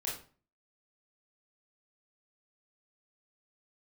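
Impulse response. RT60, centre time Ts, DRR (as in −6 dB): 0.40 s, 36 ms, −5.5 dB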